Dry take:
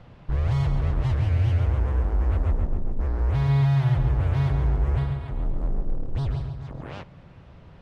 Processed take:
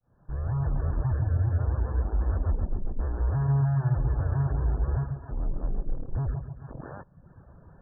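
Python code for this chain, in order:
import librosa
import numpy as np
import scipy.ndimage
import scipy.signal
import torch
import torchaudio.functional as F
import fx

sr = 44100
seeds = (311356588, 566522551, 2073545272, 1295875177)

y = fx.fade_in_head(x, sr, length_s=0.71)
y = fx.brickwall_lowpass(y, sr, high_hz=1800.0)
y = fx.dereverb_blind(y, sr, rt60_s=0.77)
y = y * librosa.db_to_amplitude(-1.5)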